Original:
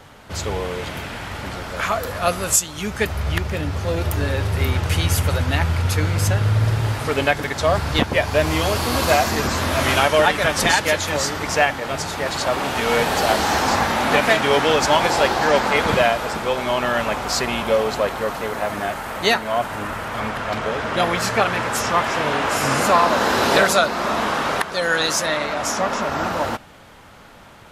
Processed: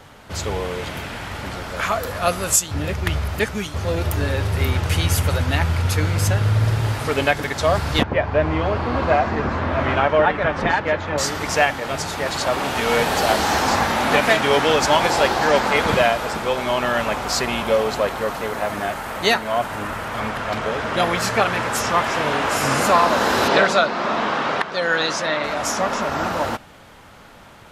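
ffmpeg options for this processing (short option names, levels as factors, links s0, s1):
-filter_complex "[0:a]asettb=1/sr,asplit=3[s0][s1][s2];[s0]atrim=end=8.034[s3];[s1]atrim=start=8.03:end=11.18,asetpts=PTS-STARTPTS,afade=t=in:d=0.004:c=qsin,afade=t=out:st=3.146:d=0.004:c=qsin,lowpass=1800[s4];[s2]atrim=start=11.176[s5];[s3][s4]acrossfade=d=0.004:c1=hsin:c2=qsin[s6];[s6][s5]acrossfade=d=0.004:c1=qsin:c2=hsin,asettb=1/sr,asplit=3[s7][s8][s9];[s7]atrim=end=23.484[s10];[s8]atrim=start=23.48:end=25.44,asetpts=PTS-STARTPTS,afade=t=in:d=0.004:c=qsin,afade=t=out:st=1.956:d=0.004:c=qsin,highpass=120,lowpass=4500[s11];[s9]atrim=start=25.436[s12];[s10][s11]acrossfade=d=0.004:c1=hsin:c2=qsin[s13];[s13][s12]acrossfade=d=0.004:c1=qsin:c2=hsin,asplit=3[s14][s15][s16];[s14]atrim=end=2.712[s17];[s15]atrim=start=2.708:end=3.742,asetpts=PTS-STARTPTS,areverse[s18];[s16]atrim=start=3.738[s19];[s17][s18]acrossfade=d=0.004:c1=hsin:c2=hsin[s20];[s20][s19]acrossfade=d=0.004:c1=hsin:c2=hsin"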